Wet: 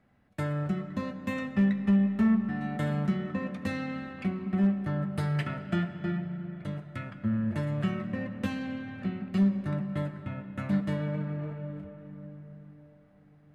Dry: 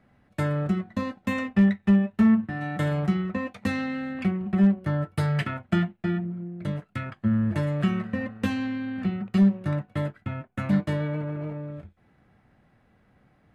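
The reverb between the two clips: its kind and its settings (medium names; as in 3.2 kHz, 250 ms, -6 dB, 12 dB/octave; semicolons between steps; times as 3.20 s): algorithmic reverb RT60 5 s, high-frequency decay 0.55×, pre-delay 5 ms, DRR 9 dB; trim -5.5 dB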